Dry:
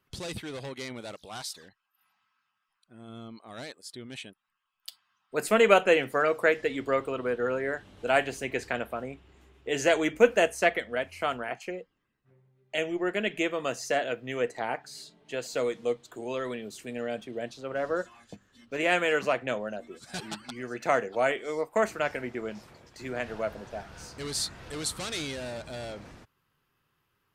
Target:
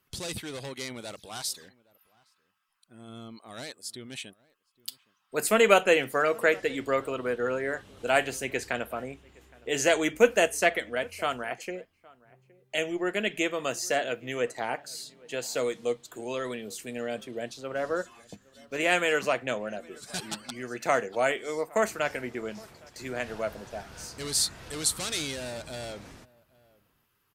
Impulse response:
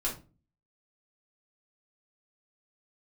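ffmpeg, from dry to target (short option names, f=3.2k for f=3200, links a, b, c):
-filter_complex "[0:a]aemphasis=mode=production:type=cd,asplit=2[a][b];[b]adelay=816.3,volume=-24dB,highshelf=f=4k:g=-18.4[c];[a][c]amix=inputs=2:normalize=0"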